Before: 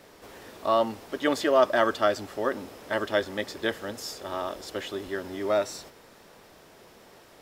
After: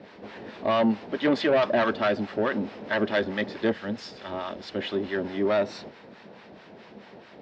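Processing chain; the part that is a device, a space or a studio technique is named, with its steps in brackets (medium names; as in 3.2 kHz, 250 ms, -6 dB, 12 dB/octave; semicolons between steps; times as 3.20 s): 3.72–4.79 s: peaking EQ 460 Hz -6 dB 2.6 oct; guitar amplifier with harmonic tremolo (harmonic tremolo 4.6 Hz, depth 70%, crossover 810 Hz; saturation -25.5 dBFS, distortion -9 dB; cabinet simulation 100–4000 Hz, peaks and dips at 210 Hz +9 dB, 1.2 kHz -5 dB, 3.3 kHz -3 dB); trim +8.5 dB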